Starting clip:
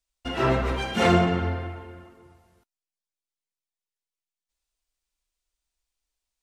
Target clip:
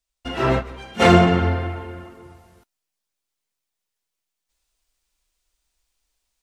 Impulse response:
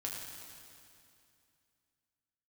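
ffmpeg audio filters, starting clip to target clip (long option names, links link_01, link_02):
-filter_complex "[0:a]asplit=3[link_01][link_02][link_03];[link_01]afade=type=out:start_time=0.58:duration=0.02[link_04];[link_02]agate=range=-15dB:threshold=-22dB:ratio=16:detection=peak,afade=type=in:start_time=0.58:duration=0.02,afade=type=out:start_time=1.12:duration=0.02[link_05];[link_03]afade=type=in:start_time=1.12:duration=0.02[link_06];[link_04][link_05][link_06]amix=inputs=3:normalize=0,dynaudnorm=framelen=400:gausssize=3:maxgain=8.5dB,volume=1dB"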